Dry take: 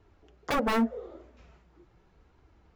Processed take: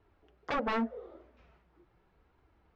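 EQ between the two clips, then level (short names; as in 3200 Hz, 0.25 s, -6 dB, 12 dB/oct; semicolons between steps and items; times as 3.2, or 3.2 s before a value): air absorption 190 m; low shelf 410 Hz -6 dB; -2.0 dB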